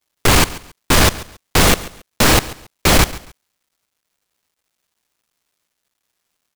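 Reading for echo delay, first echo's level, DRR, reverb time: 138 ms, -18.0 dB, no reverb, no reverb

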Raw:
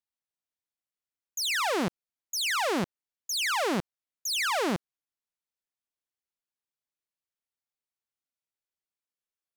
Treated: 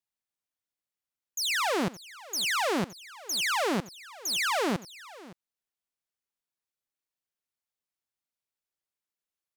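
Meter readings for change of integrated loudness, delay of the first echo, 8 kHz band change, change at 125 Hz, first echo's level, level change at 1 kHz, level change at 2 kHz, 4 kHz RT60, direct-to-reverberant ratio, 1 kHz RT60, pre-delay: 0.0 dB, 87 ms, 0.0 dB, 0.0 dB, -19.5 dB, 0.0 dB, 0.0 dB, no reverb, no reverb, no reverb, no reverb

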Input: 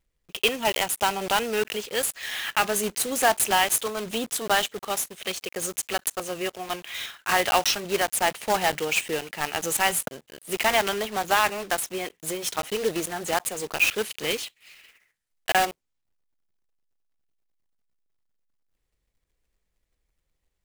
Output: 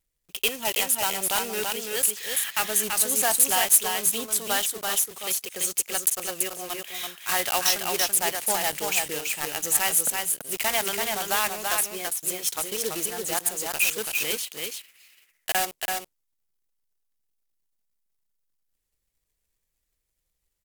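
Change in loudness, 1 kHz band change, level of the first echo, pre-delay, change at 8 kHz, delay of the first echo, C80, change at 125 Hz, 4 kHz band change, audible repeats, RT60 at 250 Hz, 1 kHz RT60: +1.5 dB, -4.5 dB, -4.0 dB, no reverb, +5.5 dB, 334 ms, no reverb, -5.0 dB, -0.5 dB, 1, no reverb, no reverb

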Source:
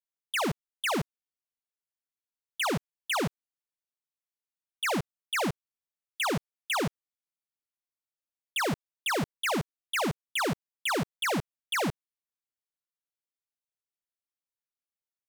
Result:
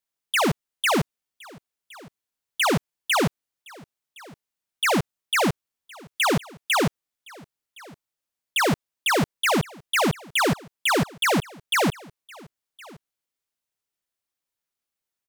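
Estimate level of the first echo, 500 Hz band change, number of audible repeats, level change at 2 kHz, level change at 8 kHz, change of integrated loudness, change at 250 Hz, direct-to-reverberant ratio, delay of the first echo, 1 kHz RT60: -23.5 dB, +7.5 dB, 1, +7.5 dB, +7.5 dB, +7.5 dB, +7.5 dB, no reverb, 1065 ms, no reverb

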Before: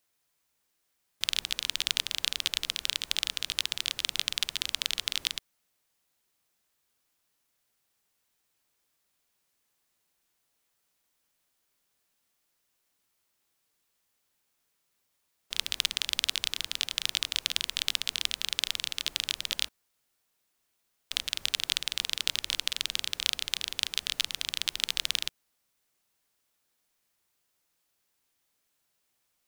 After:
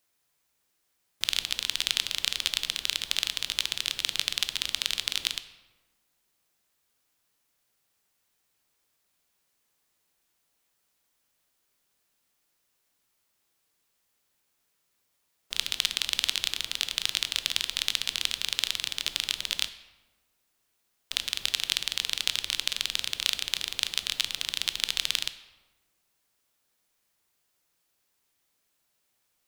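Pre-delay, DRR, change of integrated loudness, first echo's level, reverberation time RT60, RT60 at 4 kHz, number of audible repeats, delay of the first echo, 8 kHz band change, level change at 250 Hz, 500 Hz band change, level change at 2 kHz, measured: 13 ms, 11.0 dB, +1.5 dB, no echo, 1.3 s, 0.75 s, no echo, no echo, +1.5 dB, +2.0 dB, +2.0 dB, +2.0 dB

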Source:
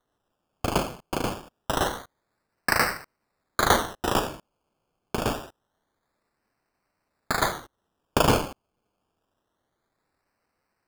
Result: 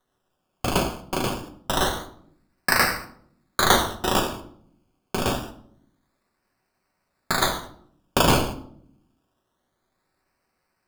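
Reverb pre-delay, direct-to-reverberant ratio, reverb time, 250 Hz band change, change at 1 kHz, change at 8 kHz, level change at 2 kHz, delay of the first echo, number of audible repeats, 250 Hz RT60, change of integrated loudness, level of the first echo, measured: 5 ms, 3.5 dB, 0.65 s, +3.0 dB, +2.0 dB, +4.5 dB, +3.0 dB, no echo, no echo, 1.0 s, +2.5 dB, no echo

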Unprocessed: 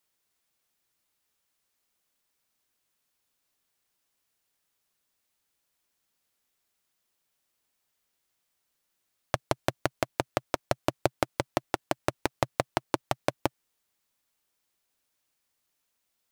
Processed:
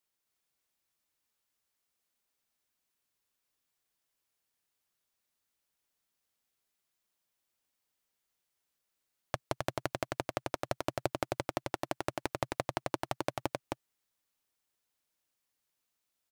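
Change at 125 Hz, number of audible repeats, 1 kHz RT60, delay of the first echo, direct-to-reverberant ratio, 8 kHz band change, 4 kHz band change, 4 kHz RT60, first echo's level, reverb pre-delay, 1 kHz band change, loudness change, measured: -5.0 dB, 1, no reverb, 264 ms, no reverb, -5.0 dB, -5.0 dB, no reverb, -3.0 dB, no reverb, -5.0 dB, -5.5 dB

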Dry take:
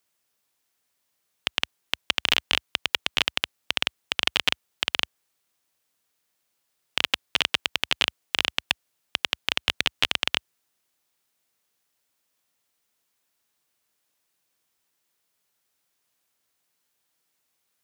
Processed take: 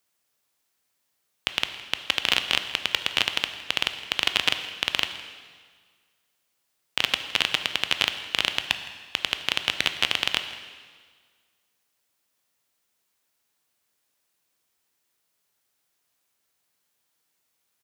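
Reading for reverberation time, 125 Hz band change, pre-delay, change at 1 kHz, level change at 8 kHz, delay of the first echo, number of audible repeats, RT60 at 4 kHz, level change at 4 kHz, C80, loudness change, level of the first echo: 1.7 s, +0.5 dB, 8 ms, +0.5 dB, +0.5 dB, 163 ms, 1, 1.6 s, +0.5 dB, 10.5 dB, +0.5 dB, -19.5 dB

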